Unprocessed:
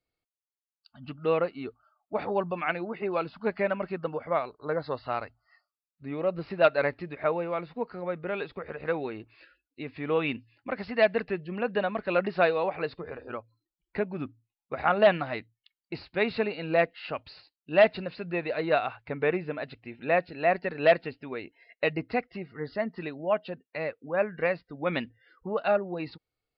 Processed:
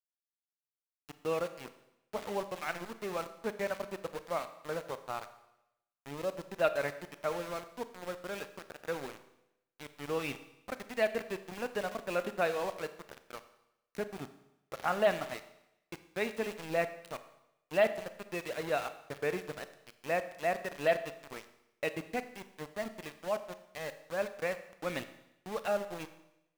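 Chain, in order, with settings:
centre clipping without the shift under −31.5 dBFS
four-comb reverb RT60 0.87 s, combs from 28 ms, DRR 11 dB
level −7.5 dB

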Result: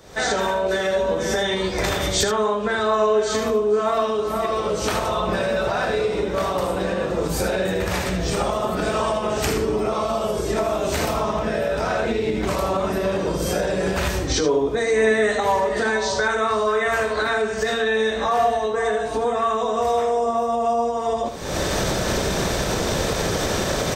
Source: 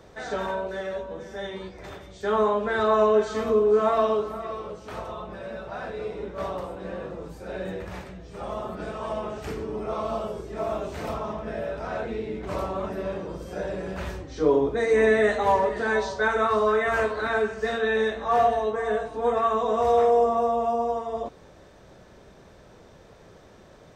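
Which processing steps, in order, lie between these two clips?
camcorder AGC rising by 63 dB per second
high-shelf EQ 3,600 Hz +12 dB
on a send: single-tap delay 77 ms −10 dB

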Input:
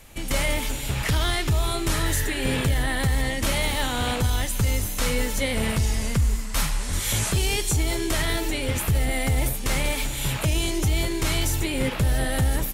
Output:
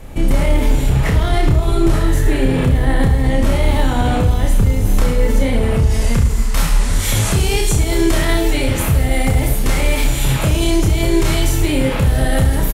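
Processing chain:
tilt shelving filter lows +8 dB, about 1,300 Hz, from 0:05.89 lows +3 dB
brickwall limiter −16.5 dBFS, peak gain reduction 9.5 dB
reverse bouncing-ball delay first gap 30 ms, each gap 1.2×, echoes 5
level +7 dB

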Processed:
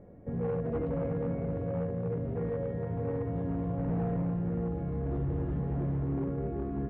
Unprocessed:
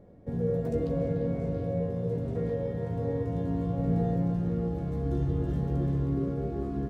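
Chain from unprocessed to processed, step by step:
hard clipping −25 dBFS, distortion −15 dB
low-pass filter 2,500 Hz 24 dB per octave
in parallel at −1 dB: brickwall limiter −35.5 dBFS, peak gain reduction 11 dB
on the sum: level −4 dB

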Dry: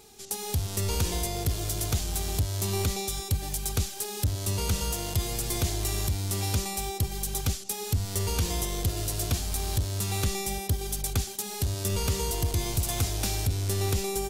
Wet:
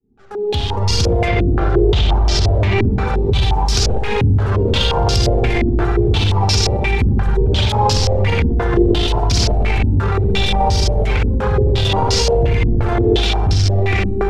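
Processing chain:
fade in at the beginning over 2.37 s
phase shifter 0.96 Hz, delay 3.7 ms, feedback 45%
spring reverb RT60 1.1 s, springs 60 ms, chirp 35 ms, DRR 1 dB
delay with pitch and tempo change per echo 438 ms, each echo +2 semitones, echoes 2, each echo −6 dB
0:01.28–0:02.91: high-frequency loss of the air 78 metres
boost into a limiter +27.5 dB
low-pass on a step sequencer 5.7 Hz 260–5,200 Hz
level −7 dB

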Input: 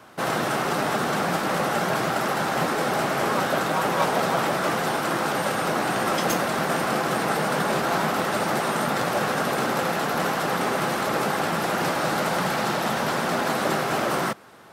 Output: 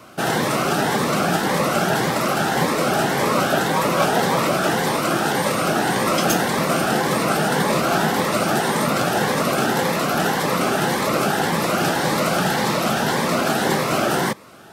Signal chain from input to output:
phaser whose notches keep moving one way rising 1.8 Hz
level +6.5 dB

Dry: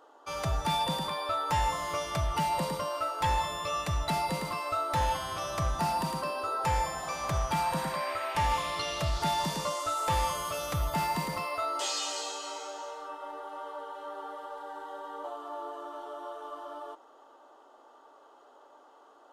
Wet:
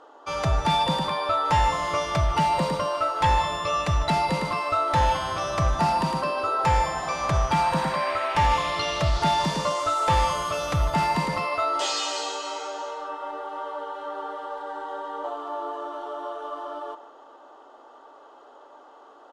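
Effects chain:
high-frequency loss of the air 66 metres
far-end echo of a speakerphone 150 ms, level −13 dB
level +7.5 dB

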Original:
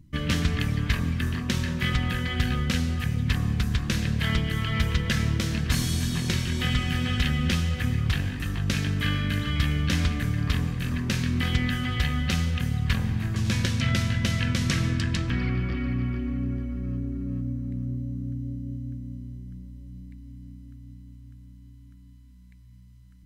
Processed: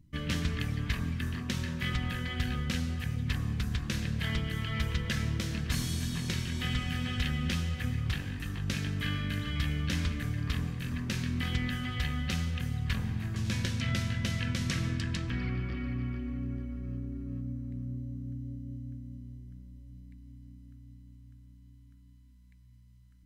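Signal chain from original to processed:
hum removal 45.75 Hz, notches 35
level −6.5 dB

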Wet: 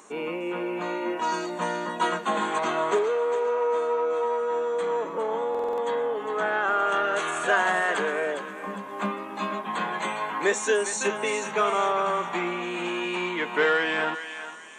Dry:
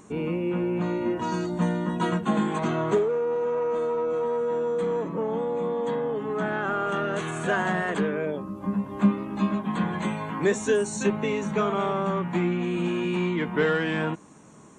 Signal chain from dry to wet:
high-pass filter 540 Hz 12 dB per octave
on a send: feedback echo with a high-pass in the loop 406 ms, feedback 38%, high-pass 1,000 Hz, level −8.5 dB
on the sum: buffer that repeats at 0:05.50, samples 2,048, times 5
level +4.5 dB

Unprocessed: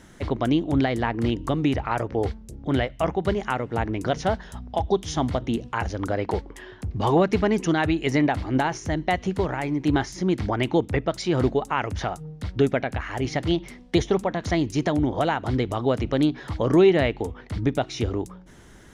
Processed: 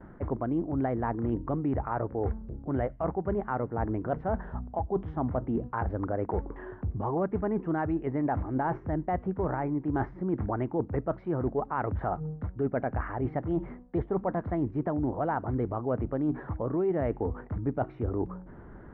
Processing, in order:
low-pass filter 1,400 Hz 24 dB per octave
noise gate with hold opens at −45 dBFS
reversed playback
downward compressor 6 to 1, threshold −29 dBFS, peak gain reduction 15 dB
reversed playback
level +2.5 dB

